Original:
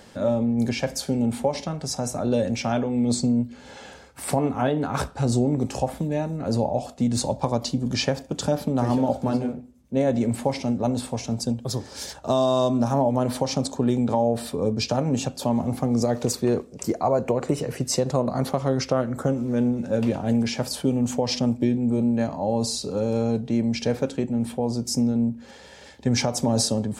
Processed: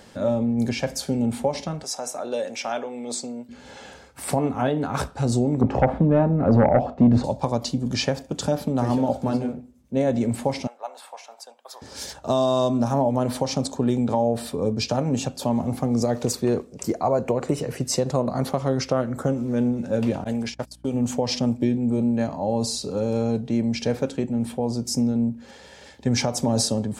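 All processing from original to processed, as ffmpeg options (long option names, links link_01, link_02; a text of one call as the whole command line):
ffmpeg -i in.wav -filter_complex "[0:a]asettb=1/sr,asplit=3[link_01][link_02][link_03];[link_01]atrim=end=1.834[link_04];[link_02]atrim=start=1.83:end=3.49,asetpts=PTS-STARTPTS,afade=type=in:duration=0.004:curve=qsin,afade=type=out:start_time=1.656:duration=0.004:curve=qsin,highpass=500,bandreject=frequency=4300:width=14[link_05];[link_03]atrim=start=3.486[link_06];[link_04][link_05]acrossfade=duration=0.004:curve1=hsin:curve2=qsin[link_07];[link_07][link_06]acrossfade=duration=0.004:curve1=qsin:curve2=hsin,asettb=1/sr,asplit=3[link_08][link_09][link_10];[link_08]atrim=end=5.614[link_11];[link_09]atrim=start=5.61:end=7.24,asetpts=PTS-STARTPTS,afade=type=in:duration=0.004:curve=qsin,afade=type=out:start_time=1.626:duration=0.004:curve=qsin,lowpass=1400,aeval=exprs='0.316*sin(PI/2*1.78*val(0)/0.316)':channel_layout=same[link_12];[link_10]atrim=start=7.236[link_13];[link_11][link_12]acrossfade=duration=0.004:curve1=hsin:curve2=qsin[link_14];[link_14][link_13]acrossfade=duration=0.004:curve1=qsin:curve2=hsin,asettb=1/sr,asplit=3[link_15][link_16][link_17];[link_15]atrim=end=10.674[link_18];[link_16]atrim=start=10.67:end=11.82,asetpts=PTS-STARTPTS,afade=type=in:duration=0.004:curve=qsin,afade=type=out:start_time=1.146:duration=0.004:curve=qsin,highpass=frequency=750:width=0.5412,highpass=frequency=750:width=1.3066,equalizer=frequency=6600:width_type=o:width=2.3:gain=-12[link_19];[link_17]atrim=start=11.816[link_20];[link_18][link_19]acrossfade=duration=0.004:curve1=hsin:curve2=qsin[link_21];[link_21][link_20]acrossfade=duration=0.004:curve1=qsin:curve2=hsin,asettb=1/sr,asplit=3[link_22][link_23][link_24];[link_22]atrim=end=20.244[link_25];[link_23]atrim=start=20.24:end=20.94,asetpts=PTS-STARTPTS,afade=type=in:duration=0.004:curve=qsin,afade=type=out:start_time=0.696:duration=0.004:curve=qsin,agate=range=-33dB:threshold=-28dB:ratio=16:release=100:detection=peak,lowshelf=frequency=390:gain=-7,aeval=exprs='val(0)+0.00251*(sin(2*PI*60*n/s)+sin(2*PI*2*60*n/s)/2+sin(2*PI*3*60*n/s)/3+sin(2*PI*4*60*n/s)/4+sin(2*PI*5*60*n/s)/5)':channel_layout=same[link_26];[link_24]atrim=start=20.936[link_27];[link_25][link_26]acrossfade=duration=0.004:curve1=hsin:curve2=qsin[link_28];[link_28][link_27]acrossfade=duration=0.004:curve1=qsin:curve2=hsin" out.wav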